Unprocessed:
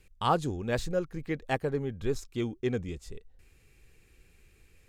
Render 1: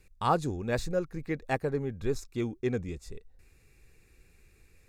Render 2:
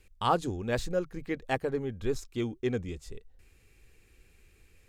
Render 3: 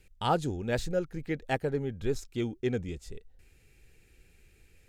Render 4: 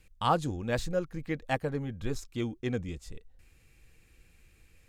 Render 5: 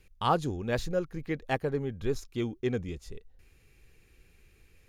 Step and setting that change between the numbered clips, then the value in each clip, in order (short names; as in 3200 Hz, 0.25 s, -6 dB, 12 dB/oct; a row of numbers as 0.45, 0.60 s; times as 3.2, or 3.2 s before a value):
notch, frequency: 3100, 150, 1100, 400, 8000 Hz